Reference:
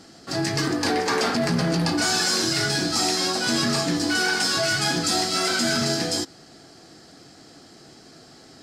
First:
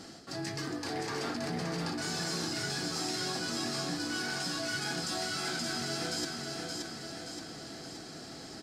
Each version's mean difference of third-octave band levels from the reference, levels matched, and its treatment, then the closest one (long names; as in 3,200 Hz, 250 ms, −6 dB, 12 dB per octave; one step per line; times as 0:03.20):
6.5 dB: reversed playback
downward compressor 10 to 1, threshold −34 dBFS, peak gain reduction 15.5 dB
reversed playback
repeating echo 574 ms, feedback 55%, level −4 dB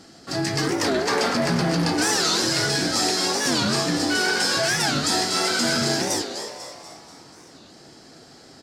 2.5 dB: echo with shifted repeats 242 ms, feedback 52%, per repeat +120 Hz, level −8.5 dB
wow of a warped record 45 rpm, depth 250 cents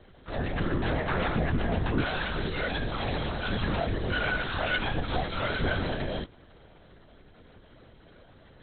11.0 dB: flanger 0.36 Hz, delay 4.1 ms, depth 4.6 ms, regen +67%
linear-prediction vocoder at 8 kHz whisper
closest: second